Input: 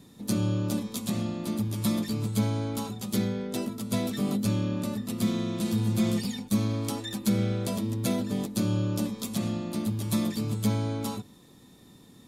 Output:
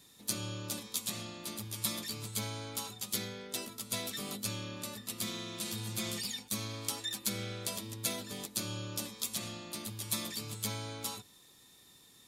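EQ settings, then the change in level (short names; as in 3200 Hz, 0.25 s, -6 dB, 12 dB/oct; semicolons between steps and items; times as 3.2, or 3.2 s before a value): passive tone stack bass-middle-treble 5-5-5; resonant low shelf 300 Hz -6.5 dB, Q 1.5; +8.0 dB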